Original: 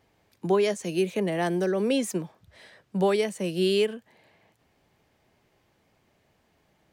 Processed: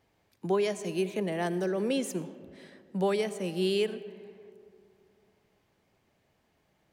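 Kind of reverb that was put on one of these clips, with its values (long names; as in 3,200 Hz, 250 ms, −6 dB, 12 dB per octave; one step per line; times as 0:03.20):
comb and all-pass reverb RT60 2.6 s, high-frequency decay 0.4×, pre-delay 40 ms, DRR 14.5 dB
level −4.5 dB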